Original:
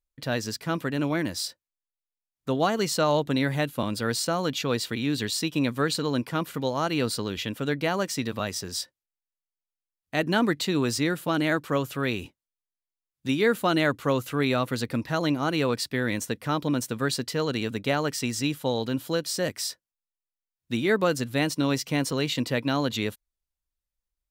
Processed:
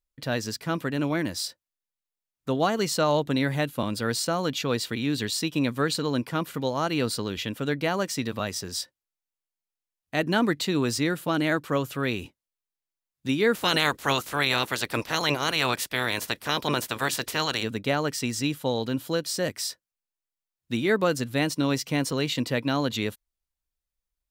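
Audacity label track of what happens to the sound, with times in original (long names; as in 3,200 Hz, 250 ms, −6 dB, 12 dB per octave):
13.540000	17.620000	ceiling on every frequency bin ceiling under each frame's peak by 22 dB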